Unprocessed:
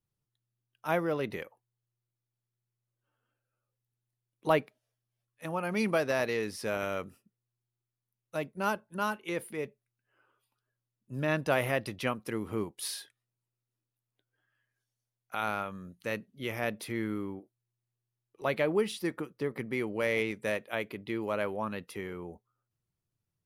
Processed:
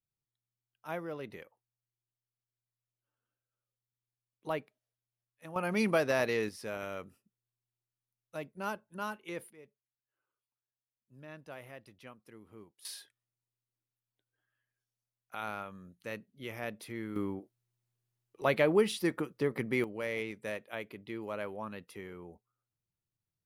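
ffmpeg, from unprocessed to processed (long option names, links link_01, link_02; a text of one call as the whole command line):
ffmpeg -i in.wav -af "asetnsamples=nb_out_samples=441:pad=0,asendcmd='5.56 volume volume 0dB;6.49 volume volume -6.5dB;9.5 volume volume -19.5dB;12.85 volume volume -6.5dB;17.16 volume volume 2dB;19.84 volume volume -6.5dB',volume=-9.5dB" out.wav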